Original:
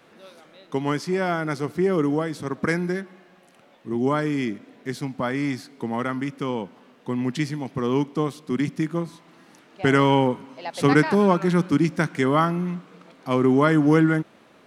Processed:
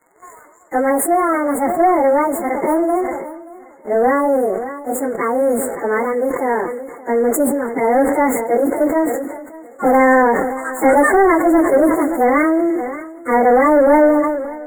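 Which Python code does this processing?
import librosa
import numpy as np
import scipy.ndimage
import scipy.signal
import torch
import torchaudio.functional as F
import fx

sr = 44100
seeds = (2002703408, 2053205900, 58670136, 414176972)

y = fx.pitch_bins(x, sr, semitones=11.0)
y = fx.dynamic_eq(y, sr, hz=4000.0, q=0.73, threshold_db=-41.0, ratio=4.0, max_db=-7)
y = fx.leveller(y, sr, passes=2)
y = fx.brickwall_bandstop(y, sr, low_hz=2200.0, high_hz=6700.0)
y = fx.echo_feedback(y, sr, ms=578, feedback_pct=34, wet_db=-20)
y = fx.sustainer(y, sr, db_per_s=42.0)
y = y * librosa.db_to_amplitude(4.0)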